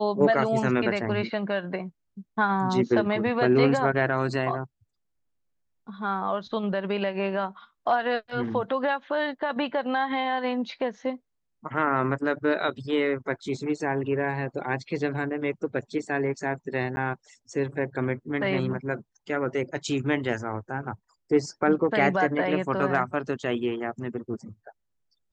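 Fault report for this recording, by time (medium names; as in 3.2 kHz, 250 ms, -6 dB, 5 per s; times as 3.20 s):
16.96–16.97 s: dropout 10 ms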